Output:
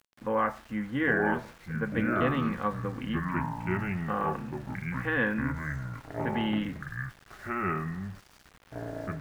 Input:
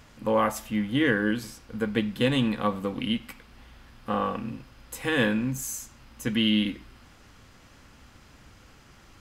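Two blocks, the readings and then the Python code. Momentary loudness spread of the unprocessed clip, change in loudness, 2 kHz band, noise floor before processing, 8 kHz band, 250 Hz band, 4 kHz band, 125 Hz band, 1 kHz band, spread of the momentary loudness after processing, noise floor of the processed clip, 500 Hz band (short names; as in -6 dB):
15 LU, -4.0 dB, +0.5 dB, -54 dBFS, under -15 dB, -4.0 dB, -13.5 dB, +1.0 dB, +1.0 dB, 12 LU, -58 dBFS, -3.0 dB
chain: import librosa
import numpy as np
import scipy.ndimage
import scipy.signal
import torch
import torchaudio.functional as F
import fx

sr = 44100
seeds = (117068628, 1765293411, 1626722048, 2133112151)

y = fx.echo_pitch(x, sr, ms=724, semitones=-5, count=2, db_per_echo=-3.0)
y = fx.lowpass_res(y, sr, hz=1700.0, q=2.0)
y = np.where(np.abs(y) >= 10.0 ** (-43.0 / 20.0), y, 0.0)
y = F.gain(torch.from_numpy(y), -6.0).numpy()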